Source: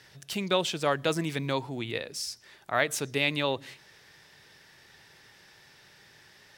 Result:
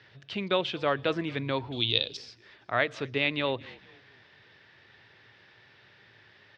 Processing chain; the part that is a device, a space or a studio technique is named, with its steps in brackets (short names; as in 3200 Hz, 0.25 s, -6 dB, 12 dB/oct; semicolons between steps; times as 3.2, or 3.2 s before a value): frequency-shifting delay pedal into a guitar cabinet (frequency-shifting echo 0.224 s, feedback 44%, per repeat -54 Hz, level -23 dB; speaker cabinet 76–3800 Hz, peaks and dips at 110 Hz +7 dB, 160 Hz -6 dB, 830 Hz -3 dB); 1.72–2.17 resonant high shelf 2600 Hz +11 dB, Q 3